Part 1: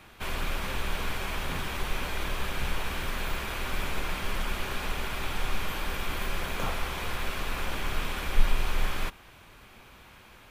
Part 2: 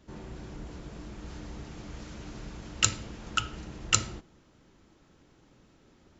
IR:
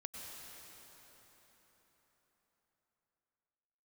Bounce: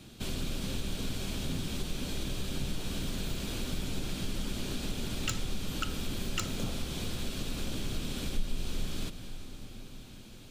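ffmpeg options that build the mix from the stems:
-filter_complex "[0:a]equalizer=f=125:t=o:w=1:g=7,equalizer=f=250:t=o:w=1:g=9,equalizer=f=1k:t=o:w=1:g=-10,equalizer=f=2k:t=o:w=1:g=-9,equalizer=f=4k:t=o:w=1:g=6,equalizer=f=8k:t=o:w=1:g=7,volume=-2.5dB,asplit=2[a][b];[b]volume=-7dB[c];[1:a]aeval=exprs='0.841*sin(PI/2*2.82*val(0)/0.841)':c=same,adelay=2450,volume=-14.5dB[d];[2:a]atrim=start_sample=2205[e];[c][e]afir=irnorm=-1:irlink=0[f];[a][d][f]amix=inputs=3:normalize=0,equalizer=f=11k:t=o:w=0.77:g=-2.5,acompressor=threshold=-33dB:ratio=2"

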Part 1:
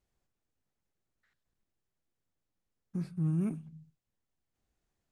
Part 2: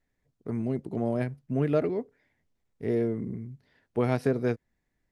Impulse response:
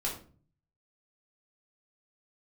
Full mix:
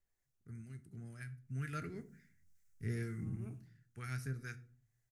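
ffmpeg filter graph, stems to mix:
-filter_complex "[0:a]highpass=290,volume=-10.5dB,asplit=2[a][b];[b]volume=-15.5dB[c];[1:a]firequalizer=gain_entry='entry(110,0);entry(250,-15);entry(550,-27);entry(1000,-21);entry(1400,1);entry(3300,-8);entry(6200,9)':delay=0.05:min_phase=1,acrossover=split=670[d][e];[d]aeval=exprs='val(0)*(1-0.5/2+0.5/2*cos(2*PI*2.1*n/s))':c=same[f];[e]aeval=exprs='val(0)*(1-0.5/2-0.5/2*cos(2*PI*2.1*n/s))':c=same[g];[f][g]amix=inputs=2:normalize=0,afade=t=in:st=1.36:d=0.67:silence=0.298538,afade=t=out:st=3.27:d=0.51:silence=0.398107,asplit=3[h][i][j];[i]volume=-11dB[k];[j]apad=whole_len=225379[l];[a][l]sidechaincompress=threshold=-42dB:ratio=8:attack=16:release=769[m];[2:a]atrim=start_sample=2205[n];[c][k]amix=inputs=2:normalize=0[o];[o][n]afir=irnorm=-1:irlink=0[p];[m][h][p]amix=inputs=3:normalize=0"

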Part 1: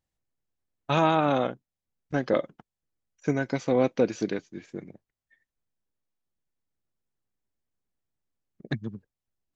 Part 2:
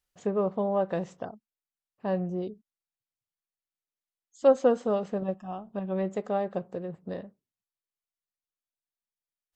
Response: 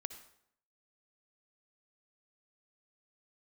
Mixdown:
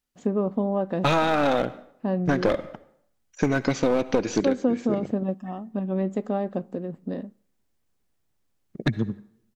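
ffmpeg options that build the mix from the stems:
-filter_complex "[0:a]acontrast=85,aeval=exprs='clip(val(0),-1,0.141)':c=same,adelay=150,volume=-0.5dB,asplit=2[a][b];[b]volume=-3.5dB[c];[1:a]equalizer=f=250:w=2.2:g=14.5,volume=-1dB,asplit=2[d][e];[e]volume=-19.5dB[f];[2:a]atrim=start_sample=2205[g];[c][f]amix=inputs=2:normalize=0[h];[h][g]afir=irnorm=-1:irlink=0[i];[a][d][i]amix=inputs=3:normalize=0,acompressor=threshold=-18dB:ratio=6"

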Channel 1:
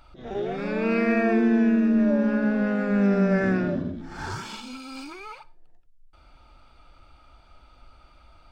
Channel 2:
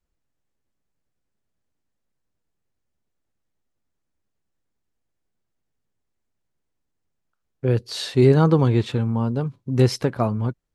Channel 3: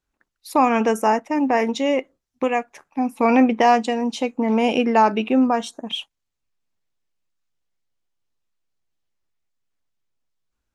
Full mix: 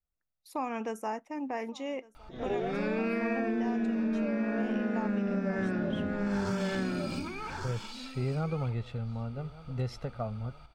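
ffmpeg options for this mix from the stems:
-filter_complex "[0:a]adelay=2150,volume=-0.5dB,asplit=2[a][b];[b]volume=-6dB[c];[1:a]highshelf=f=5.5k:g=-11.5,aecho=1:1:1.5:0.68,volume=-15dB,asplit=2[d][e];[e]volume=-21dB[f];[2:a]agate=range=-11dB:threshold=-50dB:ratio=16:detection=peak,volume=-16dB,asplit=2[g][h];[h]volume=-23.5dB[i];[c][f][i]amix=inputs=3:normalize=0,aecho=0:1:1159:1[j];[a][d][g][j]amix=inputs=4:normalize=0,acompressor=threshold=-27dB:ratio=12"

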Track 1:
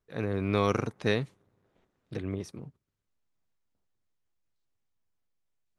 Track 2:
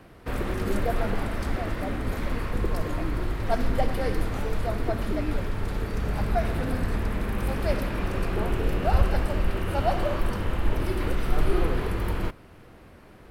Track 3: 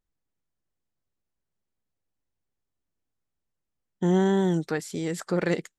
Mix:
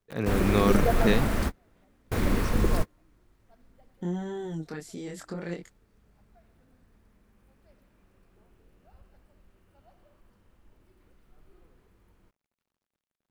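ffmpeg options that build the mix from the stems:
-filter_complex "[0:a]volume=1.5dB,asplit=2[a][b];[1:a]acrusher=bits=6:mix=0:aa=0.000001,volume=2dB[c];[2:a]acompressor=threshold=-27dB:ratio=2.5,flanger=delay=22.5:depth=4.8:speed=0.71,volume=-4dB[d];[b]apad=whole_len=586730[e];[c][e]sidechaingate=range=-38dB:threshold=-59dB:ratio=16:detection=peak[f];[a][f][d]amix=inputs=3:normalize=0,equalizer=f=210:t=o:w=0.67:g=3.5"

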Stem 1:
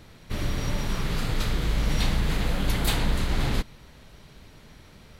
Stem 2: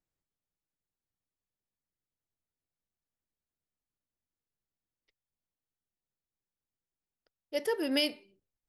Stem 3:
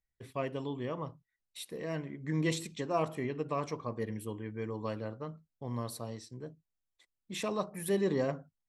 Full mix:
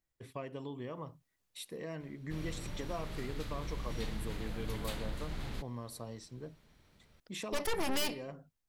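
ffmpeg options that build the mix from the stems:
-filter_complex "[0:a]adelay=2000,volume=-15.5dB[a];[1:a]dynaudnorm=f=170:g=7:m=10.5dB,aeval=exprs='0.562*(cos(1*acos(clip(val(0)/0.562,-1,1)))-cos(1*PI/2))+0.112*(cos(5*acos(clip(val(0)/0.562,-1,1)))-cos(5*PI/2))+0.0447*(cos(7*acos(clip(val(0)/0.562,-1,1)))-cos(7*PI/2))+0.2*(cos(8*acos(clip(val(0)/0.562,-1,1)))-cos(8*PI/2))':c=same,asoftclip=type=tanh:threshold=-15dB,volume=-4dB[b];[2:a]acompressor=threshold=-37dB:ratio=4,volume=-1.5dB[c];[a][b][c]amix=inputs=3:normalize=0,alimiter=level_in=1.5dB:limit=-24dB:level=0:latency=1:release=336,volume=-1.5dB"

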